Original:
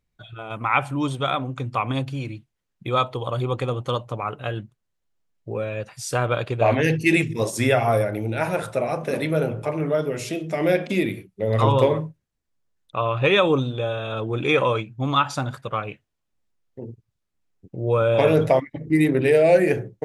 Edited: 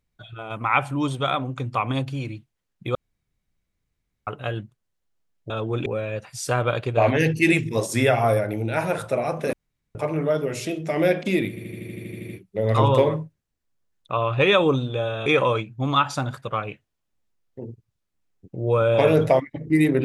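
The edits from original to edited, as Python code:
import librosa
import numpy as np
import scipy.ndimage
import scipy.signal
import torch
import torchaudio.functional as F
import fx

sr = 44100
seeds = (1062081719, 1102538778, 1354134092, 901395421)

y = fx.edit(x, sr, fx.room_tone_fill(start_s=2.95, length_s=1.32),
    fx.room_tone_fill(start_s=9.17, length_s=0.42),
    fx.stutter(start_s=11.13, slice_s=0.08, count=11),
    fx.move(start_s=14.1, length_s=0.36, to_s=5.5), tone=tone)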